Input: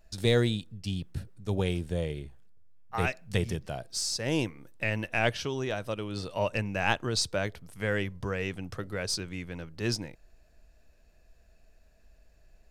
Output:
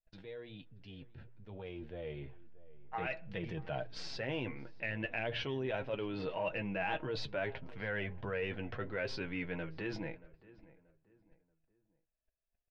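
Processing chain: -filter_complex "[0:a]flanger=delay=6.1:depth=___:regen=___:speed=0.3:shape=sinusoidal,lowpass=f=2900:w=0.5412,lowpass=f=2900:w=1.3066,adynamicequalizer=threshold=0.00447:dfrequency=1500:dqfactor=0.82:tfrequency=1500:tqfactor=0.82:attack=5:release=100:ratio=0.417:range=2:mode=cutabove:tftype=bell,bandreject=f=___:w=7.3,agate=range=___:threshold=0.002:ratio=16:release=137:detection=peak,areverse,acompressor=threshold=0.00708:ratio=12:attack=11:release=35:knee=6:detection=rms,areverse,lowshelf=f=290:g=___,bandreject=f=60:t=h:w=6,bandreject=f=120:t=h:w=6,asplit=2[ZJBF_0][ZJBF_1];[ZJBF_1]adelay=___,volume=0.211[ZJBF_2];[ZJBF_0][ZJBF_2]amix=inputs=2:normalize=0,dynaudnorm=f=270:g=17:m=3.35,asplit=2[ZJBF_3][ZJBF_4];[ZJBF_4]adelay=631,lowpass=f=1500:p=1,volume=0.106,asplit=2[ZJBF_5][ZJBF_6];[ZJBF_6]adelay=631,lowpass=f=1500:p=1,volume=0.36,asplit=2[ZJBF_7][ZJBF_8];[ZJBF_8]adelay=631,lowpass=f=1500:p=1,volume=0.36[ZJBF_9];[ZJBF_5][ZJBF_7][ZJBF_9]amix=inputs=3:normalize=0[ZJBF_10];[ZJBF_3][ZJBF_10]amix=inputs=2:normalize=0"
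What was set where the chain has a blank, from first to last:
2.6, 30, 1200, 0.0447, -7.5, 15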